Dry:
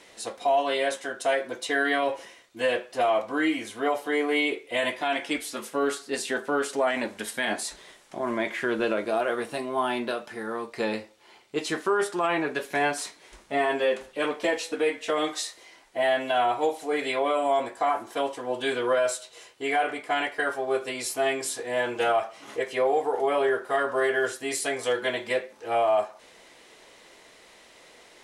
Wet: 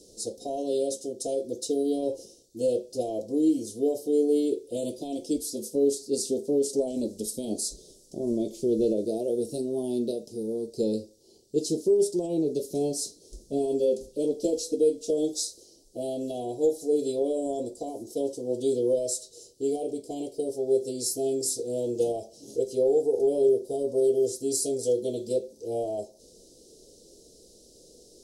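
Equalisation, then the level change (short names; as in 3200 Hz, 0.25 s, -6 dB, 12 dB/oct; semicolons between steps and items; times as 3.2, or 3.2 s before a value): elliptic band-stop 470–5000 Hz, stop band 80 dB; low shelf 70 Hz +8 dB; +4.0 dB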